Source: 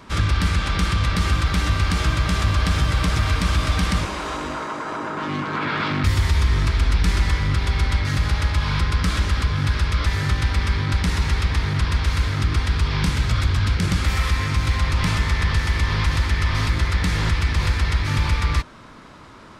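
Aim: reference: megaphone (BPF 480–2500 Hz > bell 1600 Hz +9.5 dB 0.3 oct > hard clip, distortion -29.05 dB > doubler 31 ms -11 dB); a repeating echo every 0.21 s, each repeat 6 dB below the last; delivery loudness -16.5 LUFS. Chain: BPF 480–2500 Hz; bell 1600 Hz +9.5 dB 0.3 oct; feedback echo 0.21 s, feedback 50%, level -6 dB; hard clip -16 dBFS; doubler 31 ms -11 dB; gain +8 dB

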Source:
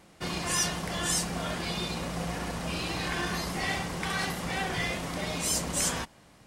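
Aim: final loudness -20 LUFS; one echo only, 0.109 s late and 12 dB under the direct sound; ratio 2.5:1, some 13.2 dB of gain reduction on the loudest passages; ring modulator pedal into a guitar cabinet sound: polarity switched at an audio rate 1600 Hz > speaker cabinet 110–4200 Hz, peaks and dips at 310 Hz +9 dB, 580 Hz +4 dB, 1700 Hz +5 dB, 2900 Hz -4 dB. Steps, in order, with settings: compressor 2.5:1, threshold -45 dBFS; echo 0.109 s -12 dB; polarity switched at an audio rate 1600 Hz; speaker cabinet 110–4200 Hz, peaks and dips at 310 Hz +9 dB, 580 Hz +4 dB, 1700 Hz +5 dB, 2900 Hz -4 dB; gain +21 dB

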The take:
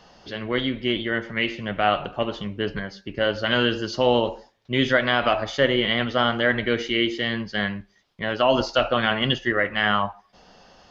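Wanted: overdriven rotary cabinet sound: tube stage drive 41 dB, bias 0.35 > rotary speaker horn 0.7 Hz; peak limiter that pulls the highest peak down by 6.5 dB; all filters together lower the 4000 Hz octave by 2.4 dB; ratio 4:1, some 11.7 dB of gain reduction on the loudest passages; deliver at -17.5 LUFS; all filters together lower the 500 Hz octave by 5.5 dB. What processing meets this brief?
bell 500 Hz -7 dB; bell 4000 Hz -3.5 dB; compressor 4:1, threshold -32 dBFS; limiter -23.5 dBFS; tube stage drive 41 dB, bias 0.35; rotary speaker horn 0.7 Hz; gain +29 dB

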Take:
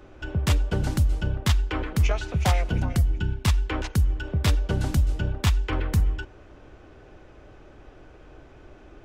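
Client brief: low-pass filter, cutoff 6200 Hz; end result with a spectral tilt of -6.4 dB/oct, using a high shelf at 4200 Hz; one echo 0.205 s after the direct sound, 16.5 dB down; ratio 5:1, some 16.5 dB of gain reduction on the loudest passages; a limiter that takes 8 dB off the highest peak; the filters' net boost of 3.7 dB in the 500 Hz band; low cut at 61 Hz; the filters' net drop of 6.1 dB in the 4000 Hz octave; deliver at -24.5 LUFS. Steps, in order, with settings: HPF 61 Hz; LPF 6200 Hz; bell 500 Hz +5 dB; bell 4000 Hz -5 dB; high shelf 4200 Hz -5 dB; compressor 5:1, threshold -37 dBFS; limiter -31.5 dBFS; echo 0.205 s -16.5 dB; gain +19 dB

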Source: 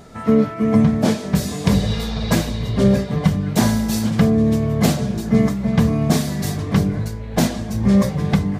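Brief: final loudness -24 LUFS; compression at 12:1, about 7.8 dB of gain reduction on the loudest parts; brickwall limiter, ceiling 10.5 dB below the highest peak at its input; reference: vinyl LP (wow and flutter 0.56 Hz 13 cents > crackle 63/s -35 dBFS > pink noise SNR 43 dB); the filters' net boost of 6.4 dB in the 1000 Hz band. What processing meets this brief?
bell 1000 Hz +8.5 dB; compressor 12:1, threshold -17 dBFS; limiter -17 dBFS; wow and flutter 0.56 Hz 13 cents; crackle 63/s -35 dBFS; pink noise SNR 43 dB; gain +2 dB

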